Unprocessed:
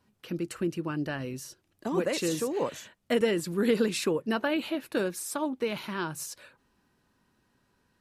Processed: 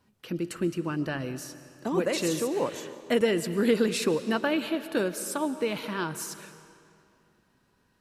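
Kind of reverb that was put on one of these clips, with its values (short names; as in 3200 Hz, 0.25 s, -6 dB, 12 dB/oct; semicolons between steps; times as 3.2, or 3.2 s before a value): digital reverb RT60 2.5 s, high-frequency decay 0.85×, pre-delay 85 ms, DRR 12.5 dB; gain +1.5 dB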